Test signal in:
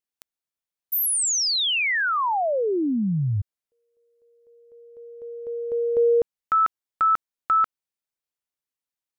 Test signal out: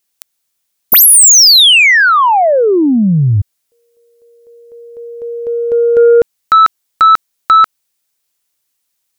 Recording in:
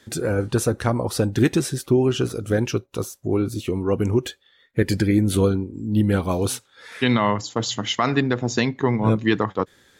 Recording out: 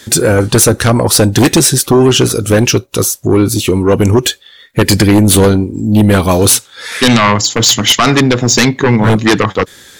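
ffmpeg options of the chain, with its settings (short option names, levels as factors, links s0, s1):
-af "highshelf=f=3000:g=10,aeval=exprs='0.708*sin(PI/2*3.16*val(0)/0.708)':c=same"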